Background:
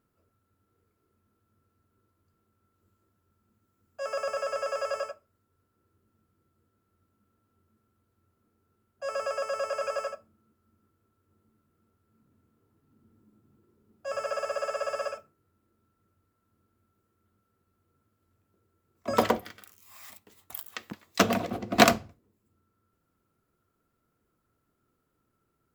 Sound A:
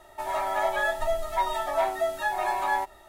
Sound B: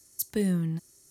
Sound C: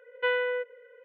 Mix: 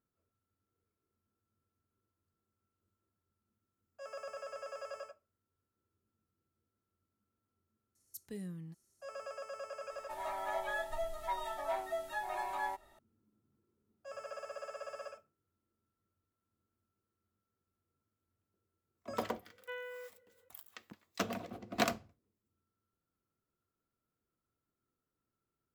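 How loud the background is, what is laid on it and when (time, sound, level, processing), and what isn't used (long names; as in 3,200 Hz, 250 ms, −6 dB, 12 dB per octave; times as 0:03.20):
background −13.5 dB
0:07.95: mix in B −17.5 dB
0:09.91: mix in A −11.5 dB
0:19.45: mix in C −17.5 dB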